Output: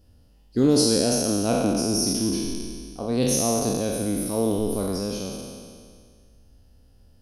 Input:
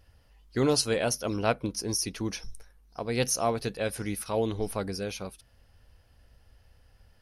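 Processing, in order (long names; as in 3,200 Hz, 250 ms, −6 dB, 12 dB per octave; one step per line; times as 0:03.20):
peak hold with a decay on every bin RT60 2.02 s
graphic EQ with 10 bands 250 Hz +9 dB, 1,000 Hz −5 dB, 2,000 Hz −12 dB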